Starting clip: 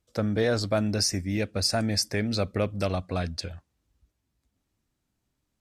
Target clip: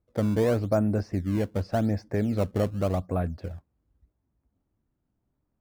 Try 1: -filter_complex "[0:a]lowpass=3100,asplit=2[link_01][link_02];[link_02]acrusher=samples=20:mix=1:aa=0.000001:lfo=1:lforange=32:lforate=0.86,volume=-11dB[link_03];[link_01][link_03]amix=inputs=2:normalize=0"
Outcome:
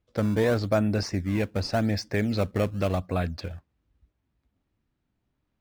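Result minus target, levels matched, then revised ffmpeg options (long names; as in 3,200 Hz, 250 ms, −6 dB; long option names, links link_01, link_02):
4,000 Hz band +9.5 dB
-filter_complex "[0:a]lowpass=1100,asplit=2[link_01][link_02];[link_02]acrusher=samples=20:mix=1:aa=0.000001:lfo=1:lforange=32:lforate=0.86,volume=-11dB[link_03];[link_01][link_03]amix=inputs=2:normalize=0"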